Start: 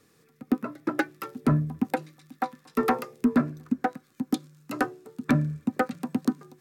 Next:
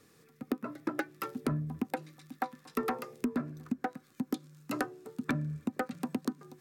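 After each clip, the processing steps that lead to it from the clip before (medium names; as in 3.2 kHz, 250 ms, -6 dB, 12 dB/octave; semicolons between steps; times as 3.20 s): compression 5:1, threshold -30 dBFS, peak gain reduction 12.5 dB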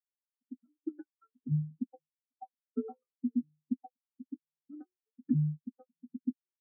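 tremolo 1.1 Hz, depth 33%; spectral contrast expander 4:1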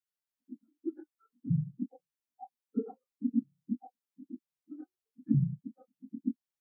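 phase randomisation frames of 50 ms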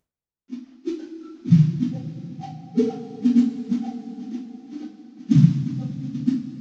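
CVSD coder 32 kbps; two-slope reverb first 0.32 s, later 4.4 s, from -18 dB, DRR -9.5 dB; trim +4 dB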